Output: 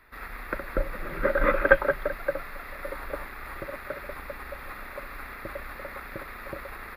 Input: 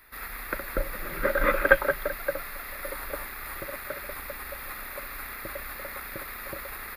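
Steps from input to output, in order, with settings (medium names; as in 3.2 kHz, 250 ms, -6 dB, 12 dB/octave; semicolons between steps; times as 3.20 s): low-pass 1.7 kHz 6 dB/octave; trim +2 dB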